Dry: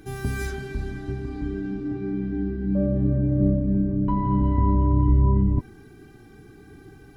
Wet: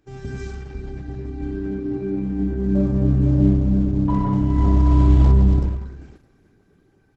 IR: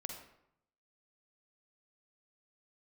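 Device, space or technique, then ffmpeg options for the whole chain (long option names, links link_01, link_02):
speakerphone in a meeting room: -filter_complex "[0:a]asplit=2[link_01][link_02];[link_02]adelay=105,lowpass=frequency=2000:poles=1,volume=-8.5dB,asplit=2[link_03][link_04];[link_04]adelay=105,lowpass=frequency=2000:poles=1,volume=0.45,asplit=2[link_05][link_06];[link_06]adelay=105,lowpass=frequency=2000:poles=1,volume=0.45,asplit=2[link_07][link_08];[link_08]adelay=105,lowpass=frequency=2000:poles=1,volume=0.45,asplit=2[link_09][link_10];[link_10]adelay=105,lowpass=frequency=2000:poles=1,volume=0.45[link_11];[link_01][link_03][link_05][link_07][link_09][link_11]amix=inputs=6:normalize=0[link_12];[1:a]atrim=start_sample=2205[link_13];[link_12][link_13]afir=irnorm=-1:irlink=0,dynaudnorm=framelen=490:gausssize=7:maxgain=8dB,agate=range=-11dB:threshold=-41dB:ratio=16:detection=peak,volume=-1.5dB" -ar 48000 -c:a libopus -b:a 12k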